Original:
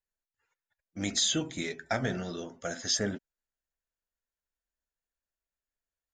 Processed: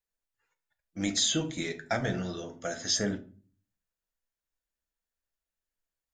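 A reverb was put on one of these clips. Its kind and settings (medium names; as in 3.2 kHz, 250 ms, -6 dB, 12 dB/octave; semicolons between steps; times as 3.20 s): simulated room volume 290 m³, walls furnished, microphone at 0.68 m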